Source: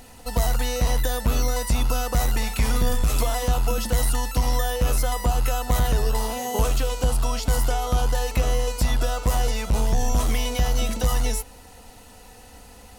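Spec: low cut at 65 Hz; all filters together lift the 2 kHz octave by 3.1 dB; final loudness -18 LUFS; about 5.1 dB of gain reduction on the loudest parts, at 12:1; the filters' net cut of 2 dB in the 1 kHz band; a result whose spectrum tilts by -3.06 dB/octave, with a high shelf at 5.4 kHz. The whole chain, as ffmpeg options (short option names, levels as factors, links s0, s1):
-af "highpass=65,equalizer=f=1000:t=o:g=-4,equalizer=f=2000:t=o:g=4,highshelf=f=5400:g=6.5,acompressor=threshold=0.0708:ratio=12,volume=3.16"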